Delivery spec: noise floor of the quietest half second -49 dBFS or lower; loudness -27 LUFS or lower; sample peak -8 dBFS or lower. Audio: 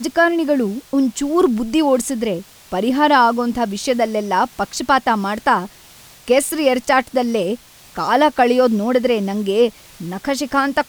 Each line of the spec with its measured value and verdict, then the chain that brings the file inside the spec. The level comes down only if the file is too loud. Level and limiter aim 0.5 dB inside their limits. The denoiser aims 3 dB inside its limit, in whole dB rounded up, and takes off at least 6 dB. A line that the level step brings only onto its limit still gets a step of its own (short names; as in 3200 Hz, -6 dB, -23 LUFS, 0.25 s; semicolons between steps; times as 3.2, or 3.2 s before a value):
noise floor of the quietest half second -44 dBFS: fail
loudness -17.5 LUFS: fail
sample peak -3.5 dBFS: fail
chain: gain -10 dB